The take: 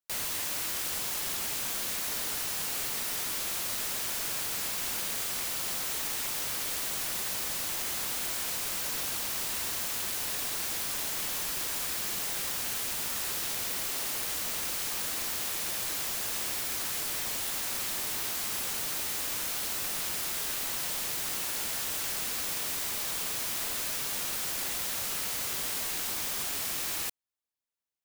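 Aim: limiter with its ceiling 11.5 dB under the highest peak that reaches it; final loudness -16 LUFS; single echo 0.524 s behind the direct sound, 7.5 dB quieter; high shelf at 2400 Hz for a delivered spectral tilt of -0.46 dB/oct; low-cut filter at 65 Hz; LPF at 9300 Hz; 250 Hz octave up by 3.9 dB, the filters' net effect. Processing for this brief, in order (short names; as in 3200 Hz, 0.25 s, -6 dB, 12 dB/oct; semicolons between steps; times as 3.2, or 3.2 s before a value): HPF 65 Hz; LPF 9300 Hz; bell 250 Hz +5 dB; high shelf 2400 Hz +6.5 dB; limiter -29.5 dBFS; echo 0.524 s -7.5 dB; gain +19.5 dB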